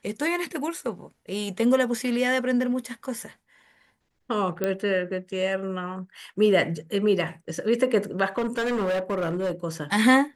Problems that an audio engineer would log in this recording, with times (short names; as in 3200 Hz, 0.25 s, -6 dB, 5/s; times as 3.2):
4.64 pop -12 dBFS
8.38–9.51 clipped -22.5 dBFS